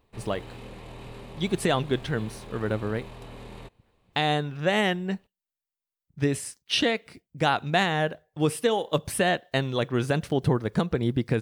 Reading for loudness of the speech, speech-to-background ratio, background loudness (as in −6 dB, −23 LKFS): −27.0 LKFS, 17.0 dB, −44.0 LKFS